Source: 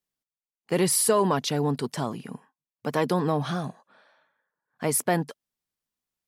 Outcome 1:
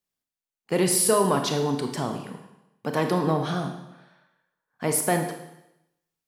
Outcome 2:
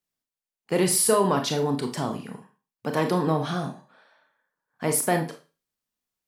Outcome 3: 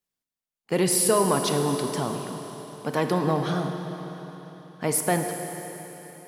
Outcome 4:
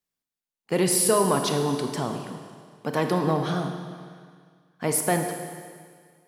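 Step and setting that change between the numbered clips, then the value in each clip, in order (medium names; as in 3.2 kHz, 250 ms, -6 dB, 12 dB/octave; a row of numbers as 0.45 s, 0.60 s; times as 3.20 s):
Schroeder reverb, RT60: 0.86 s, 0.32 s, 3.9 s, 1.9 s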